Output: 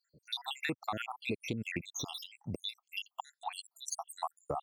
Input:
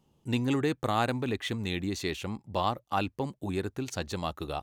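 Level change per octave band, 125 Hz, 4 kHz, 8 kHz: -12.0, -2.5, +1.5 dB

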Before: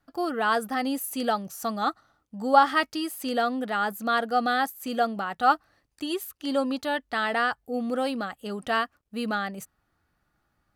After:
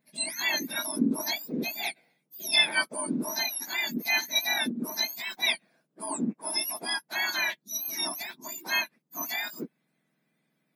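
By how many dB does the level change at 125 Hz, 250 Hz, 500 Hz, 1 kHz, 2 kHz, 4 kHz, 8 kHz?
n/a, -4.0 dB, -11.5 dB, -14.0 dB, +0.5 dB, +7.5 dB, +10.0 dB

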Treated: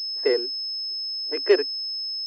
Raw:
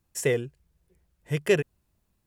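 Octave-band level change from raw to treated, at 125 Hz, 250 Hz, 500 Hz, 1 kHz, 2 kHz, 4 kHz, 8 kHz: under -35 dB, +1.5 dB, +4.5 dB, +3.5 dB, -1.0 dB, +18.5 dB, under -20 dB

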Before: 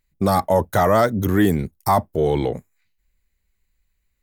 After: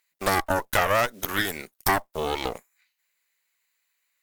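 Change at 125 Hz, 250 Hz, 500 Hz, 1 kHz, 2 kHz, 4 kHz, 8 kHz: -13.5, -13.5, -9.0, -5.0, +3.5, +4.5, +2.5 dB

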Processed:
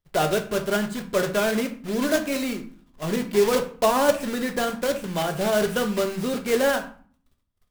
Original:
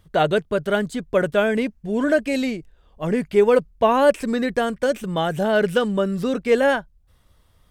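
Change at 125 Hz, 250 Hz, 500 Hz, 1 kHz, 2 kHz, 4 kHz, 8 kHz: -3.5, -3.5, -4.0, -3.0, -3.0, +1.0, +8.5 dB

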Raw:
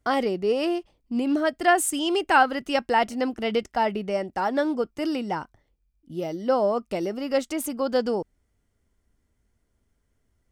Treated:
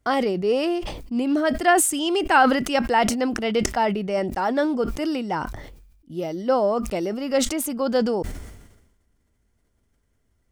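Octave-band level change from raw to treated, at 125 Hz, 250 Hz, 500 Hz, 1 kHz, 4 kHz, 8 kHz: +6.5, +3.5, +2.0, +2.0, +3.0, +6.5 dB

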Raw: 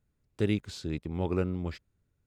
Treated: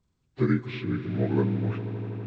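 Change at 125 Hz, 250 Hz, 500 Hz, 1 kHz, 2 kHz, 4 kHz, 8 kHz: +7.0 dB, +6.0 dB, +3.0 dB, +3.5 dB, +5.5 dB, -2.0 dB, under -15 dB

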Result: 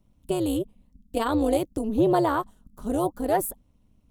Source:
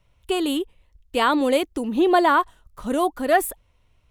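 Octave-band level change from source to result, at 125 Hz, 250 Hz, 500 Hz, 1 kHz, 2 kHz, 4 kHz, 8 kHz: n/a, -2.5 dB, -3.5 dB, -7.0 dB, -12.5 dB, -11.0 dB, -2.5 dB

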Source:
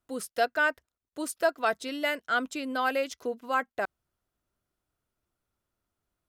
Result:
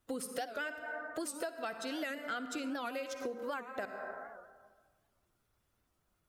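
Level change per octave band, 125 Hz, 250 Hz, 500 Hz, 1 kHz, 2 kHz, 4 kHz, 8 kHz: n/a, -5.0 dB, -9.5 dB, -11.5 dB, -11.5 dB, -8.5 dB, -4.0 dB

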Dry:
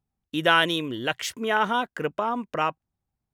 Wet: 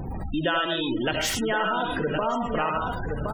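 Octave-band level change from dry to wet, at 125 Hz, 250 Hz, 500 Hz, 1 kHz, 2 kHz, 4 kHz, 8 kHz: +5.5, +2.5, +1.0, -1.5, -3.0, -1.5, +4.5 dB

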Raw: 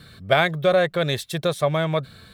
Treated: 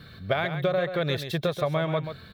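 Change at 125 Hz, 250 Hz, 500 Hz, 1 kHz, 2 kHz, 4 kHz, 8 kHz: -3.0, -3.5, -5.5, -6.5, -7.0, -6.5, -11.0 dB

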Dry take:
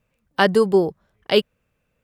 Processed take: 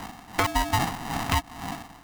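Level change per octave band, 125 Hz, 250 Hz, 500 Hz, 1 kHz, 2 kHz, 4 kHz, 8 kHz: +1.0 dB, -9.0 dB, -18.0 dB, 0.0 dB, -4.0 dB, -5.5 dB, n/a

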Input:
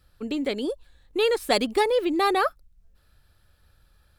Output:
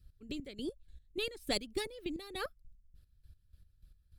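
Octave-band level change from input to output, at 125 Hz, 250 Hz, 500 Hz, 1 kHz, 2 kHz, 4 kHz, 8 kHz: n/a, -14.0 dB, -17.5 dB, -23.0 dB, -14.0 dB, -10.0 dB, -9.0 dB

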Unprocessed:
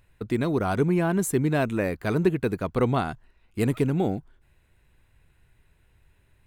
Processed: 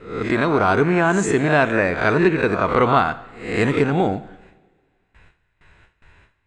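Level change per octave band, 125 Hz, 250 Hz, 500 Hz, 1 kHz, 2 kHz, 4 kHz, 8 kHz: +2.5, +4.5, +7.5, +12.0, +13.5, +9.5, +2.5 dB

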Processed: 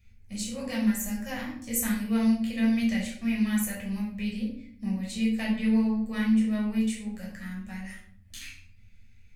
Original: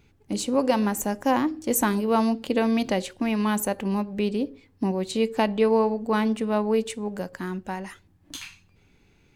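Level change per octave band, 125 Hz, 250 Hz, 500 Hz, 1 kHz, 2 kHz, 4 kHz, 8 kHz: -2.0, -0.5, -16.0, -16.5, -3.0, -4.5, -2.5 dB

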